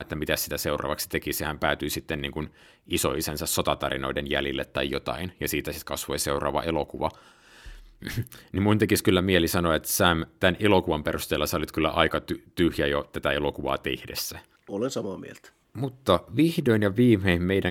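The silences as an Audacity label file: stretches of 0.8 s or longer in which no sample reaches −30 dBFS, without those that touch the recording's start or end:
7.090000	8.030000	silence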